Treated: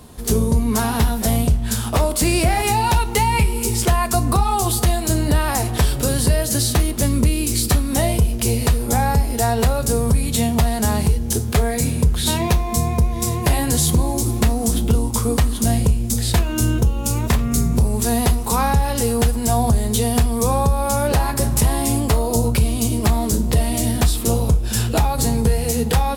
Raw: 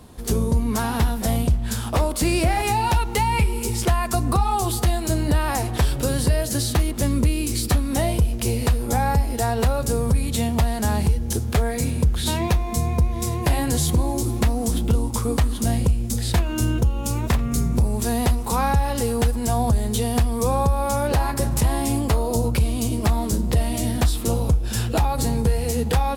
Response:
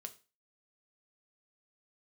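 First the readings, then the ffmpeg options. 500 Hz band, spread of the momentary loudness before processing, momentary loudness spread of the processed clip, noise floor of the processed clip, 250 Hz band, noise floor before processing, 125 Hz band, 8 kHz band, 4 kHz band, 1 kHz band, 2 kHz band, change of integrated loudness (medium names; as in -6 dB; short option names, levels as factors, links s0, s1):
+3.0 dB, 2 LU, 2 LU, -24 dBFS, +3.5 dB, -27 dBFS, +3.0 dB, +6.5 dB, +4.5 dB, +3.0 dB, +3.0 dB, +3.5 dB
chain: -filter_complex "[0:a]asplit=2[s0][s1];[1:a]atrim=start_sample=2205,highshelf=f=4300:g=7.5[s2];[s1][s2]afir=irnorm=-1:irlink=0,volume=1.88[s3];[s0][s3]amix=inputs=2:normalize=0,volume=0.668"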